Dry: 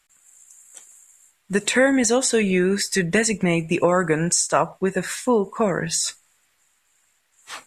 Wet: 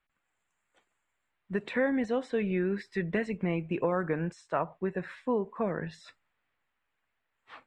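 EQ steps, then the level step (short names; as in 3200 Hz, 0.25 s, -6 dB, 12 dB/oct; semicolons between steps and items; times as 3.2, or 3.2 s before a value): LPF 11000 Hz; air absorption 430 m; -9.0 dB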